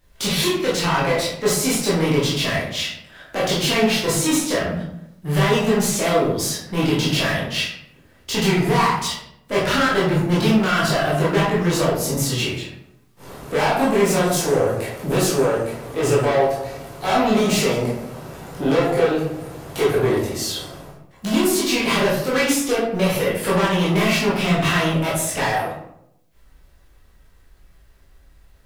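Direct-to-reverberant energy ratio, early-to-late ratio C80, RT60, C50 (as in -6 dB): -7.5 dB, 6.0 dB, 0.75 s, 2.0 dB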